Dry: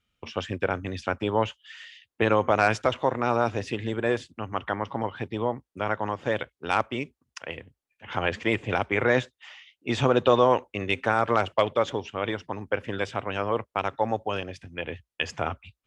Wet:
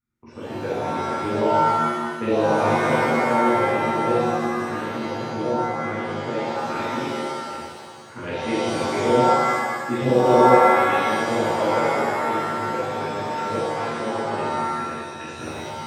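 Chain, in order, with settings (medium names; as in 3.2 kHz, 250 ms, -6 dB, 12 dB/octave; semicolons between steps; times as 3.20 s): graphic EQ 125/250/500 Hz +4/+6/+8 dB; touch-sensitive phaser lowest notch 520 Hz, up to 1.7 kHz, full sweep at -10.5 dBFS; pitch-shifted reverb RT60 1.6 s, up +7 st, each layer -2 dB, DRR -9 dB; trim -13.5 dB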